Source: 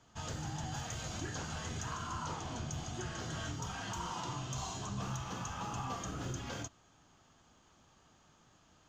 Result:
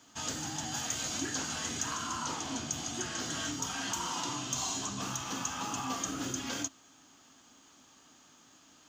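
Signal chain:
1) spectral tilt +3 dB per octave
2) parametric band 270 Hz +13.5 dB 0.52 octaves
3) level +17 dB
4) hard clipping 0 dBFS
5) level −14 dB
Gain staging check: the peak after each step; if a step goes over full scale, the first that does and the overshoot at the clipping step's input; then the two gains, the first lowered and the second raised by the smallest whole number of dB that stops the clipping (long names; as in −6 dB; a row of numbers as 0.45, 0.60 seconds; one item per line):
−21.5, −21.0, −4.0, −4.0, −18.0 dBFS
no step passes full scale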